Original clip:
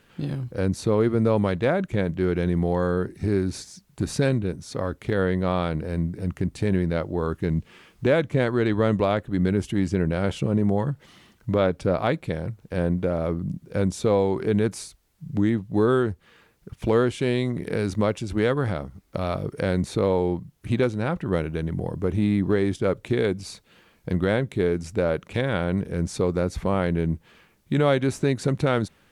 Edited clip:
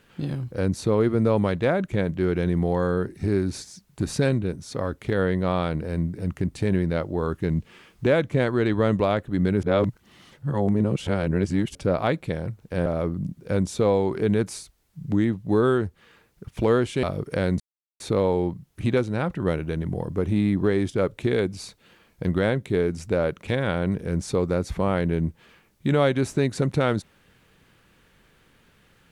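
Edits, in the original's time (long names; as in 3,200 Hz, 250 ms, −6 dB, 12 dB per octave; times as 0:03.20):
0:09.63–0:11.75: reverse
0:12.86–0:13.11: remove
0:17.28–0:19.29: remove
0:19.86: splice in silence 0.40 s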